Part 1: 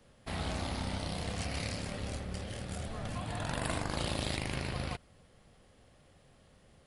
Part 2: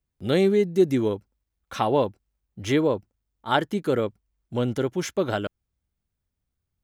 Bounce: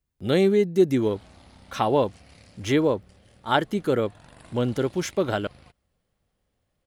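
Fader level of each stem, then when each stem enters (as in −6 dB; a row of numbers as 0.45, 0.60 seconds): −15.0, +0.5 decibels; 0.75, 0.00 seconds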